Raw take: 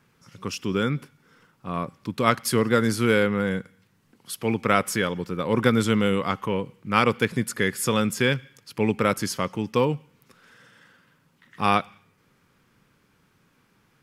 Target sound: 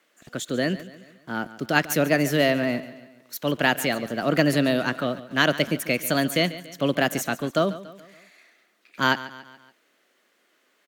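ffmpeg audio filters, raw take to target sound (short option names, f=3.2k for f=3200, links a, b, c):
-filter_complex "[0:a]acrossover=split=250|2800[a][b][c];[a]aeval=exprs='val(0)*gte(abs(val(0)),0.00531)':c=same[d];[d][b][c]amix=inputs=3:normalize=0,asetrate=56889,aresample=44100,aecho=1:1:142|284|426|568:0.158|0.0777|0.0381|0.0186"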